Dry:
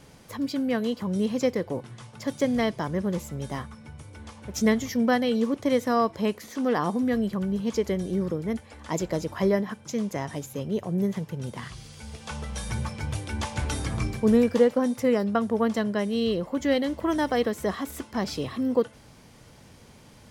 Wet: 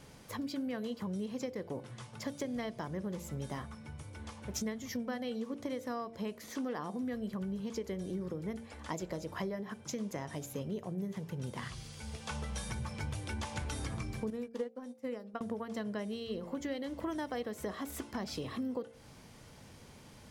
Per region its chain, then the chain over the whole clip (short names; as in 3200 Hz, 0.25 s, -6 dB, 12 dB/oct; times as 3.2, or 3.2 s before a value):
14.3–15.41 HPF 150 Hz + upward expander 2.5:1, over -35 dBFS
whole clip: compressor 10:1, threshold -31 dBFS; de-hum 57.3 Hz, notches 14; gain -3 dB